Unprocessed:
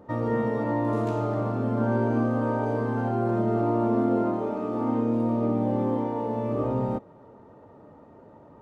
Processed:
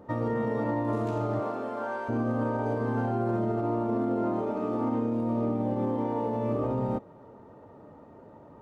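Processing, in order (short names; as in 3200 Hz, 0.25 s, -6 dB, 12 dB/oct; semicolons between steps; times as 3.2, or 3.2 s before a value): 1.39–2.08 HPF 300 Hz -> 970 Hz 12 dB/oct; limiter -20.5 dBFS, peak gain reduction 7 dB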